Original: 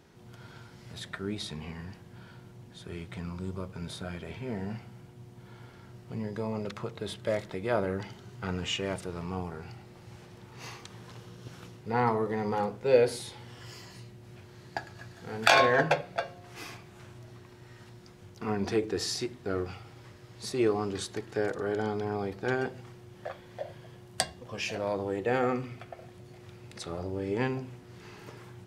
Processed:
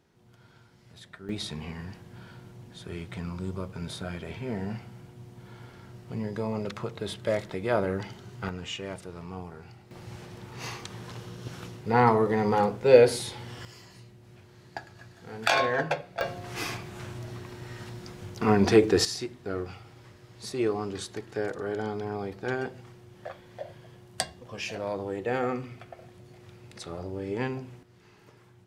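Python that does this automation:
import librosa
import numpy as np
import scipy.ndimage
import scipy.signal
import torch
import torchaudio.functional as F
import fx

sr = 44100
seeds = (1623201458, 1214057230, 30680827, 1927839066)

y = fx.gain(x, sr, db=fx.steps((0.0, -8.0), (1.29, 2.5), (8.49, -4.0), (9.91, 6.0), (13.65, -3.0), (16.21, 9.5), (19.05, -1.0), (27.83, -9.0)))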